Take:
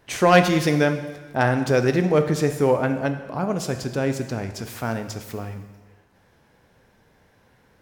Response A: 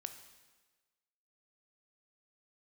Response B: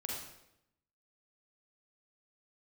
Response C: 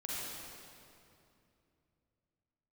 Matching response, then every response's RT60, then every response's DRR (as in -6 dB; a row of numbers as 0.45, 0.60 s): A; 1.3, 0.85, 2.7 s; 7.5, -2.5, -7.0 dB